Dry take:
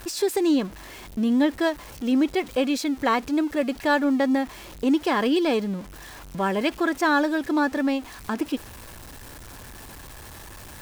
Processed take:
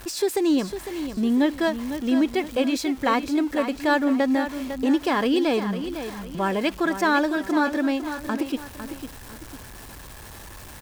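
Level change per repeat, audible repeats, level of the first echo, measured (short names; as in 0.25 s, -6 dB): -8.5 dB, 2, -10.0 dB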